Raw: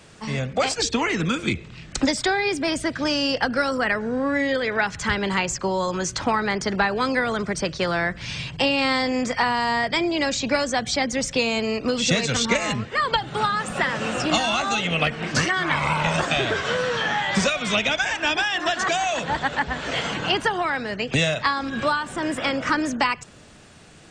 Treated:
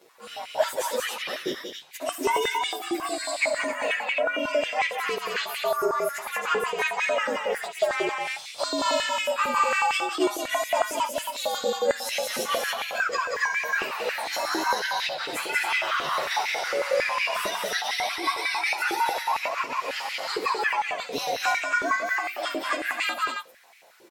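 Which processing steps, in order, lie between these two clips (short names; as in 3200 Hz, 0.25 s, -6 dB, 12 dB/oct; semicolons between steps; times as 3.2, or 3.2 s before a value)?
inharmonic rescaling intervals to 117%; on a send: loudspeakers at several distances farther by 23 m -12 dB, 63 m -4 dB, 93 m -5 dB; on the sum: stepped high-pass 11 Hz 390–2200 Hz; gain -6 dB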